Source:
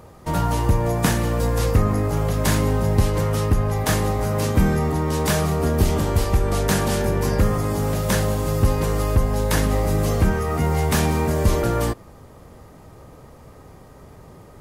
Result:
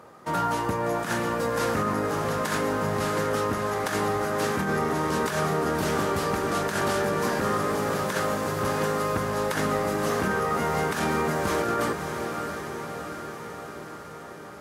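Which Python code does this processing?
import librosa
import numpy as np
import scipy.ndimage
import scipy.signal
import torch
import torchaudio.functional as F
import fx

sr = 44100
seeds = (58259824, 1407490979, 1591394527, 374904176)

y = scipy.signal.sosfilt(scipy.signal.butter(2, 210.0, 'highpass', fs=sr, output='sos'), x)
y = fx.peak_eq(y, sr, hz=1400.0, db=7.5, octaves=0.75)
y = fx.echo_diffused(y, sr, ms=624, feedback_pct=67, wet_db=-8.0)
y = fx.over_compress(y, sr, threshold_db=-21.0, ratio=-0.5)
y = fx.high_shelf(y, sr, hz=10000.0, db=-6.5)
y = y * 10.0 ** (-3.5 / 20.0)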